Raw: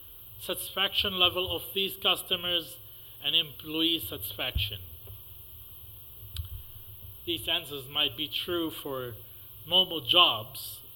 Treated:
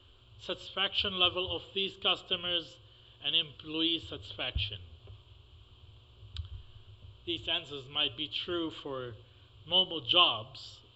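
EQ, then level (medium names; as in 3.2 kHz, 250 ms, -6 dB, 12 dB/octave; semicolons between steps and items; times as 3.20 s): brick-wall FIR low-pass 7.7 kHz; -3.5 dB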